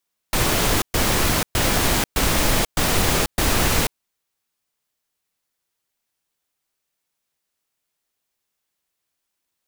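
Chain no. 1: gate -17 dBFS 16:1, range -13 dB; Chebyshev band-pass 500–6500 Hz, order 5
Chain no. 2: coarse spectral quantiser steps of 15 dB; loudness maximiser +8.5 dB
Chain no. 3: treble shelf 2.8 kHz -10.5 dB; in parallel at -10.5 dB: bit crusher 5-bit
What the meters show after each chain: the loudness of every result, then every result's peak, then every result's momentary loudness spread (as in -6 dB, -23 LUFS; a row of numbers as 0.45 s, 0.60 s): -30.0 LUFS, -12.5 LUFS, -21.0 LUFS; -13.5 dBFS, -1.0 dBFS, -4.5 dBFS; 6 LU, 2 LU, 2 LU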